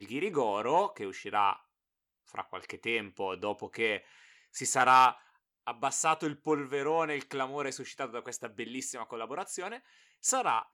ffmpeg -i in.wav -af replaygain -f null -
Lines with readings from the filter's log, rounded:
track_gain = +11.2 dB
track_peak = 0.212